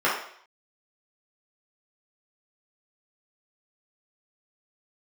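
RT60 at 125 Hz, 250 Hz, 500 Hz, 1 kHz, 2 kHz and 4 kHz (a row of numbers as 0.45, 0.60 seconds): 0.45, 0.55, 0.60, 0.60, 0.60, 0.60 seconds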